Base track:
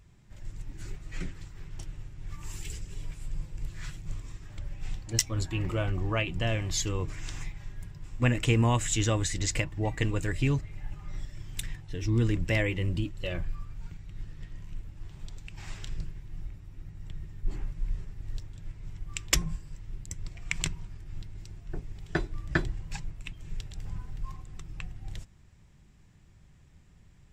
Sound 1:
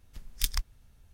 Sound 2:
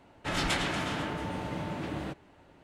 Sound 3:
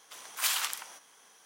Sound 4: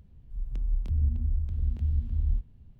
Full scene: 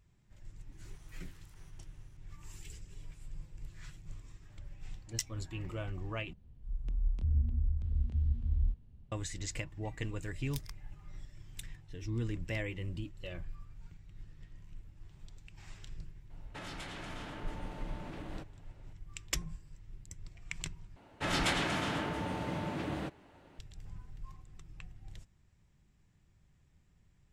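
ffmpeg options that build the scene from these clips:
ffmpeg -i bed.wav -i cue0.wav -i cue1.wav -i cue2.wav -i cue3.wav -filter_complex "[2:a]asplit=2[link_01][link_02];[0:a]volume=-10dB[link_03];[3:a]acompressor=threshold=-46dB:ratio=10:attack=1.6:release=64:knee=1:detection=peak[link_04];[4:a]aresample=22050,aresample=44100[link_05];[link_01]acompressor=threshold=-34dB:ratio=6:attack=3.2:release=140:knee=1:detection=peak[link_06];[link_03]asplit=3[link_07][link_08][link_09];[link_07]atrim=end=6.334[link_10];[link_05]atrim=end=2.79,asetpts=PTS-STARTPTS,volume=-4dB[link_11];[link_08]atrim=start=9.116:end=20.964[link_12];[link_02]atrim=end=2.63,asetpts=PTS-STARTPTS,volume=-1.5dB[link_13];[link_09]atrim=start=23.586[link_14];[link_04]atrim=end=1.45,asetpts=PTS-STARTPTS,volume=-17dB,afade=type=in:duration=0.004:curve=hsin,afade=type=out:start_time=1.446:duration=0.004:curve=hsin,adelay=720[link_15];[1:a]atrim=end=1.13,asetpts=PTS-STARTPTS,volume=-16dB,afade=type=in:duration=0.004:curve=hsin,afade=type=out:start_time=1.126:duration=0.004:curve=hsin,adelay=10120[link_16];[link_06]atrim=end=2.63,asetpts=PTS-STARTPTS,volume=-7dB,afade=type=in:duration=0.004:curve=hsin,afade=type=out:start_time=2.626:duration=0.004:curve=hsin,adelay=16300[link_17];[link_10][link_11]acrossfade=duration=0.004:curve1=hsin:curve2=hsin[link_18];[link_18][link_12]acrossfade=duration=0.004:curve1=hsin:curve2=hsin[link_19];[link_19][link_13]acrossfade=duration=0.004:curve1=hsin:curve2=hsin[link_20];[link_20][link_14]acrossfade=duration=0.004:curve1=hsin:curve2=hsin[link_21];[link_21][link_15][link_16][link_17]amix=inputs=4:normalize=0" out.wav

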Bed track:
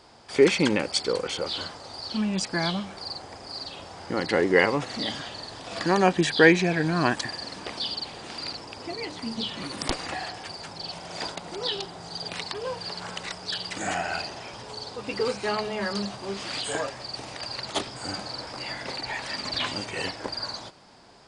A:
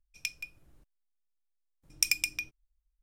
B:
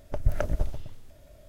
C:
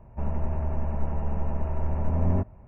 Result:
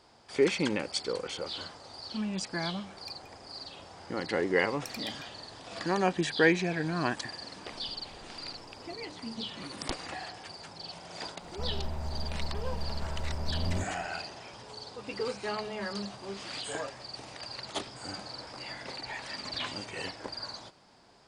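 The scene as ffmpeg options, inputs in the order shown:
ffmpeg -i bed.wav -i cue0.wav -i cue1.wav -i cue2.wav -filter_complex "[0:a]volume=-7dB[link_01];[2:a]acompressor=threshold=-38dB:ratio=6:attack=3.2:release=140:knee=1:detection=peak[link_02];[3:a]crystalizer=i=6:c=0[link_03];[1:a]atrim=end=3.02,asetpts=PTS-STARTPTS,volume=-17.5dB,afade=type=in:duration=0.004:curve=hsin,afade=type=out:start_time=3.016:duration=0.004:curve=hsin,adelay=2830[link_04];[link_02]atrim=end=1.48,asetpts=PTS-STARTPTS,volume=-15dB,afade=type=in:duration=0.004:curve=hsin,afade=type=out:start_time=1.476:duration=0.004:curve=hsin,adelay=336042S[link_05];[link_03]atrim=end=2.67,asetpts=PTS-STARTPTS,volume=-8dB,afade=type=in:duration=0.004:curve=hsin,afade=type=out:start_time=2.666:duration=0.004:curve=hsin,adelay=11410[link_06];[link_01][link_04][link_05][link_06]amix=inputs=4:normalize=0" out.wav

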